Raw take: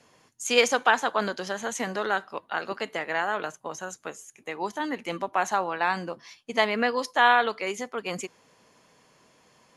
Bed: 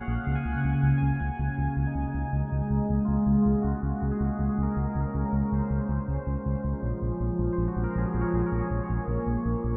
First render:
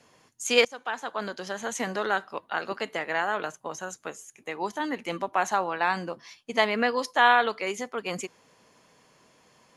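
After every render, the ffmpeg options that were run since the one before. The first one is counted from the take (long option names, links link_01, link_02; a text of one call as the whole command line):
ffmpeg -i in.wav -filter_complex "[0:a]asplit=2[link_01][link_02];[link_01]atrim=end=0.65,asetpts=PTS-STARTPTS,afade=type=out:start_time=0.646:duration=0.004:curve=hsin:silence=0.0749894[link_03];[link_02]atrim=start=0.65,asetpts=PTS-STARTPTS,afade=type=in:duration=1.16:silence=0.0749894[link_04];[link_03][link_04]concat=n=2:v=0:a=1" out.wav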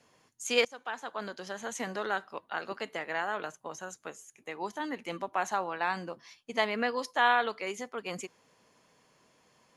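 ffmpeg -i in.wav -af "volume=-5.5dB" out.wav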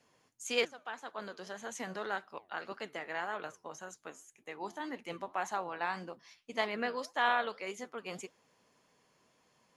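ffmpeg -i in.wav -af "aeval=exprs='0.266*(cos(1*acos(clip(val(0)/0.266,-1,1)))-cos(1*PI/2))+0.00422*(cos(3*acos(clip(val(0)/0.266,-1,1)))-cos(3*PI/2))':channel_layout=same,flanger=delay=2.2:depth=9.7:regen=80:speed=1.8:shape=triangular" out.wav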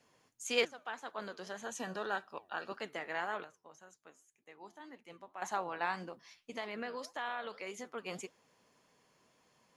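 ffmpeg -i in.wav -filter_complex "[0:a]asettb=1/sr,asplit=3[link_01][link_02][link_03];[link_01]atrim=end=1.634[link_04];[link_02]atrim=start=1.63:end=2.78,asetpts=PTS-STARTPTS,afade=type=in:duration=0.004:curve=qsin,afade=type=out:start_time=1.146:duration=0.004:curve=qsin,asuperstop=centerf=2100:order=20:qfactor=6.4[link_05];[link_03]atrim=start=2.776[link_06];[link_04][link_05]acrossfade=duration=0.004:curve1=hsin:curve2=qsin[link_07];[link_07][link_06]acrossfade=duration=0.004:curve1=qsin:curve2=hsin,asplit=3[link_08][link_09][link_10];[link_08]afade=type=out:start_time=5.95:duration=0.02[link_11];[link_09]acompressor=threshold=-39dB:ratio=2.5:attack=3.2:release=140:knee=1:detection=peak,afade=type=in:start_time=5.95:duration=0.02,afade=type=out:start_time=7.87:duration=0.02[link_12];[link_10]afade=type=in:start_time=7.87:duration=0.02[link_13];[link_11][link_12][link_13]amix=inputs=3:normalize=0,asplit=3[link_14][link_15][link_16];[link_14]atrim=end=3.442[link_17];[link_15]atrim=start=3.438:end=5.422,asetpts=PTS-STARTPTS,volume=-11.5dB[link_18];[link_16]atrim=start=5.418[link_19];[link_17][link_18]acrossfade=duration=0.004:curve1=hsin:curve2=hsin[link_20];[link_20][link_19]acrossfade=duration=0.004:curve1=hsin:curve2=hsin" out.wav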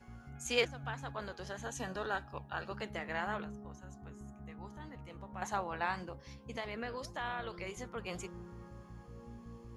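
ffmpeg -i in.wav -i bed.wav -filter_complex "[1:a]volume=-23dB[link_01];[0:a][link_01]amix=inputs=2:normalize=0" out.wav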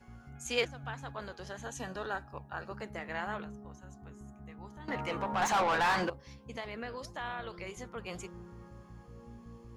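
ffmpeg -i in.wav -filter_complex "[0:a]asettb=1/sr,asplit=3[link_01][link_02][link_03];[link_01]atrim=end=2.134[link_04];[link_02]atrim=start=2.13:end=2.98,asetpts=PTS-STARTPTS,afade=type=in:duration=0.004:curve=qsin,afade=type=out:start_time=0.846:duration=0.004:curve=qsin,equalizer=frequency=3300:width=2:gain=-9.5[link_05];[link_03]atrim=start=2.976[link_06];[link_04][link_05]acrossfade=duration=0.004:curve1=hsin:curve2=qsin[link_07];[link_07][link_06]acrossfade=duration=0.004:curve1=qsin:curve2=hsin,asettb=1/sr,asplit=3[link_08][link_09][link_10];[link_08]atrim=end=4.884[link_11];[link_09]atrim=start=4.88:end=6.1,asetpts=PTS-STARTPTS,afade=type=in:duration=0.004:curve=qsin,afade=type=out:start_time=1.216:duration=0.004:curve=qsin,asplit=2[link_12][link_13];[link_13]highpass=frequency=720:poles=1,volume=29dB,asoftclip=type=tanh:threshold=-20dB[link_14];[link_12][link_14]amix=inputs=2:normalize=0,lowpass=frequency=3100:poles=1,volume=-6dB[link_15];[link_10]atrim=start=6.096[link_16];[link_11][link_15]acrossfade=duration=0.004:curve1=hsin:curve2=qsin[link_17];[link_17][link_16]acrossfade=duration=0.004:curve1=qsin:curve2=hsin" out.wav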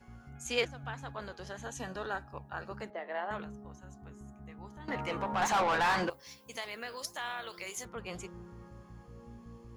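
ffmpeg -i in.wav -filter_complex "[0:a]asettb=1/sr,asplit=3[link_01][link_02][link_03];[link_01]atrim=end=2.904[link_04];[link_02]atrim=start=2.9:end=3.31,asetpts=PTS-STARTPTS,afade=type=in:duration=0.004:curve=qsin,afade=type=out:start_time=0.406:duration=0.004:curve=qsin,highpass=frequency=250:width=0.5412,highpass=frequency=250:width=1.3066,equalizer=frequency=250:width_type=q:width=4:gain=-10,equalizer=frequency=640:width_type=q:width=4:gain=7,equalizer=frequency=1400:width_type=q:width=4:gain=-5,equalizer=frequency=2400:width_type=q:width=4:gain=-9,lowpass=frequency=3500:width=0.5412,lowpass=frequency=3500:width=1.3066[link_05];[link_03]atrim=start=3.306[link_06];[link_04][link_05]acrossfade=duration=0.004:curve1=hsin:curve2=qsin[link_07];[link_07][link_06]acrossfade=duration=0.004:curve1=qsin:curve2=hsin,asettb=1/sr,asplit=3[link_08][link_09][link_10];[link_08]atrim=end=6.104[link_11];[link_09]atrim=start=6.1:end=7.85,asetpts=PTS-STARTPTS,afade=type=in:duration=0.004:curve=qsin,afade=type=out:start_time=1.746:duration=0.004:curve=qsin,aemphasis=mode=production:type=riaa[link_12];[link_10]atrim=start=7.846[link_13];[link_11][link_12]acrossfade=duration=0.004:curve1=hsin:curve2=qsin[link_14];[link_14][link_13]acrossfade=duration=0.004:curve1=qsin:curve2=hsin" out.wav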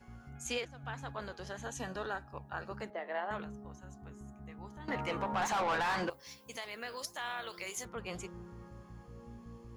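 ffmpeg -i in.wav -af "alimiter=level_in=2dB:limit=-24dB:level=0:latency=1:release=375,volume=-2dB" out.wav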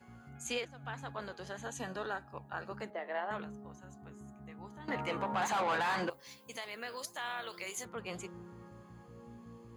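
ffmpeg -i in.wav -af "highpass=110,bandreject=frequency=5500:width=6.9" out.wav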